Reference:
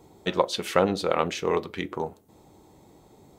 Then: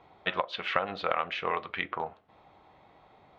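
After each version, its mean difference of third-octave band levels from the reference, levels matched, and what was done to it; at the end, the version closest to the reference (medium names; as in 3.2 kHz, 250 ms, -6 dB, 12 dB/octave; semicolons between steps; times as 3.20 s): 6.5 dB: resonant low shelf 550 Hz -13 dB, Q 1.5; compression 6:1, threshold -27 dBFS, peak gain reduction 10.5 dB; low-pass 3.1 kHz 24 dB/octave; peaking EQ 890 Hz -8.5 dB 0.31 oct; trim +4.5 dB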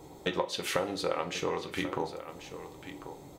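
9.0 dB: peaking EQ 210 Hz -12.5 dB 0.22 oct; compression, threshold -33 dBFS, peak gain reduction 16.5 dB; on a send: delay 1088 ms -12 dB; on the sum: two-slope reverb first 0.27 s, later 1.5 s, from -18 dB, DRR 5.5 dB; trim +4 dB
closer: first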